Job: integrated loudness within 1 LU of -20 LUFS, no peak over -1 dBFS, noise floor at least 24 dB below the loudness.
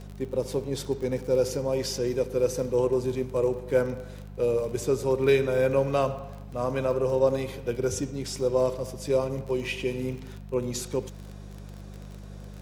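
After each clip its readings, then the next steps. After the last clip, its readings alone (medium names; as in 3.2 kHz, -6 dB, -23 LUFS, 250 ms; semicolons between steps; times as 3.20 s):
tick rate 30 per s; hum 50 Hz; highest harmonic 200 Hz; hum level -39 dBFS; loudness -27.5 LUFS; peak level -10.0 dBFS; loudness target -20.0 LUFS
-> de-click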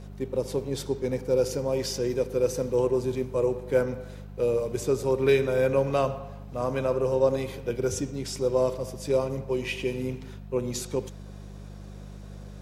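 tick rate 0.079 per s; hum 50 Hz; highest harmonic 200 Hz; hum level -39 dBFS
-> de-hum 50 Hz, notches 4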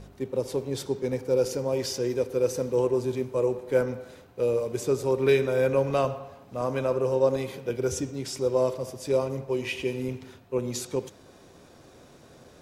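hum not found; loudness -27.5 LUFS; peak level -10.0 dBFS; loudness target -20.0 LUFS
-> trim +7.5 dB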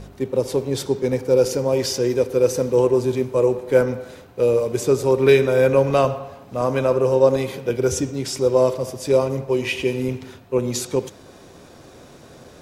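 loudness -20.0 LUFS; peak level -2.5 dBFS; noise floor -46 dBFS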